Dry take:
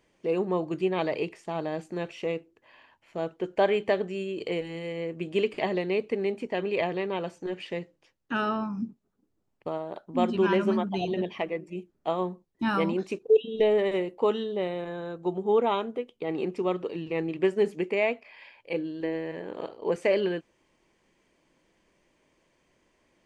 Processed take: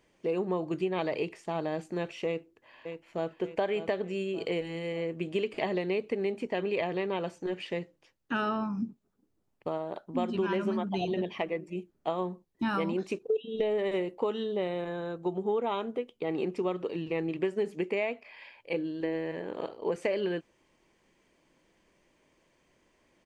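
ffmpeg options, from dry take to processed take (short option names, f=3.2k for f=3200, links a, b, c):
-filter_complex "[0:a]asplit=2[a][b];[b]afade=t=in:st=2.26:d=0.01,afade=t=out:st=3.37:d=0.01,aecho=0:1:590|1180|1770|2360|2950|3540:0.334965|0.167483|0.0837414|0.0418707|0.0209353|0.0104677[c];[a][c]amix=inputs=2:normalize=0,acompressor=threshold=-26dB:ratio=6"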